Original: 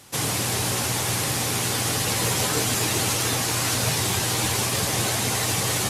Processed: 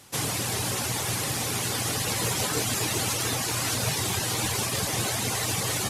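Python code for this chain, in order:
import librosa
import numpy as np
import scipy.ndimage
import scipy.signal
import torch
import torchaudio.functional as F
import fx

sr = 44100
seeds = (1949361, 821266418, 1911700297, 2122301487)

y = fx.dereverb_blind(x, sr, rt60_s=0.51)
y = F.gain(torch.from_numpy(y), -2.5).numpy()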